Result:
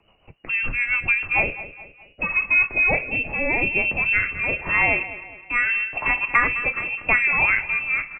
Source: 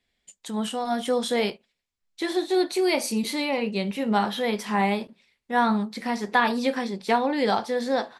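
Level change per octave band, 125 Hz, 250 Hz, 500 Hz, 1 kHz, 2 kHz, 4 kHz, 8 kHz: +1.0 dB, -11.5 dB, -7.5 dB, -3.5 dB, +13.0 dB, -12.0 dB, under -40 dB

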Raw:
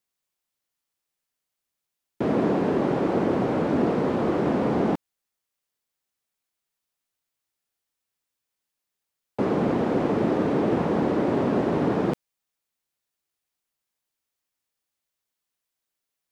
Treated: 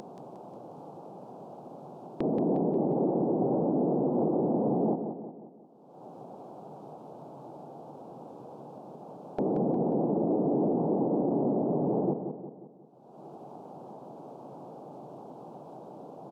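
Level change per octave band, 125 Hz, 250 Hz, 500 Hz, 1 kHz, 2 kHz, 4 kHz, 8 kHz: -4.5 dB, -3.5 dB, -3.5 dB, -5.0 dB, under -25 dB, under -20 dB, n/a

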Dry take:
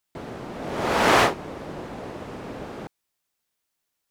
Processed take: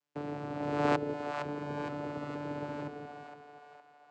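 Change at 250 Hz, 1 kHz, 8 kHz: -4.5, -11.0, -23.0 dB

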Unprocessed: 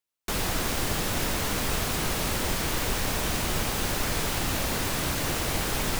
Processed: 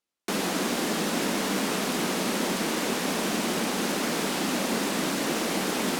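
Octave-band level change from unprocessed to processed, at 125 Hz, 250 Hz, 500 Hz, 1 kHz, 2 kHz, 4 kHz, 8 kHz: -6.0, +6.0, +4.0, +1.5, +0.5, 0.0, -1.0 dB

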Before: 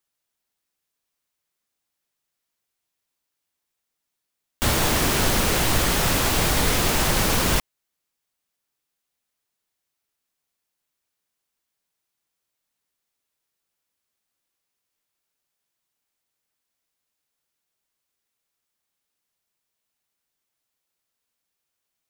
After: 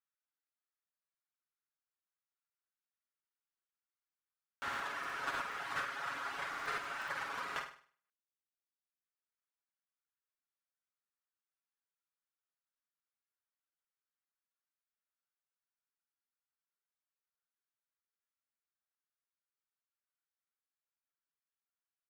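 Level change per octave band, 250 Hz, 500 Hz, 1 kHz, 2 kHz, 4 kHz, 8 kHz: -31.0, -23.5, -13.0, -12.5, -23.5, -31.5 dB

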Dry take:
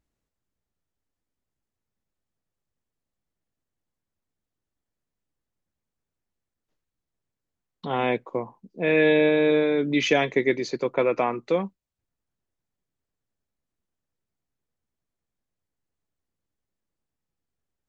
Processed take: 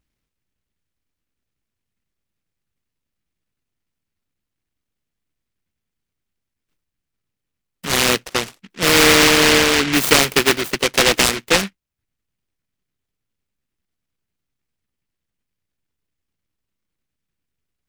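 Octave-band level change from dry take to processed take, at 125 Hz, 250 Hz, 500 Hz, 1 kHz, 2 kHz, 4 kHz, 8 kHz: +7.0 dB, +4.0 dB, +2.0 dB, +8.5 dB, +11.5 dB, +18.5 dB, n/a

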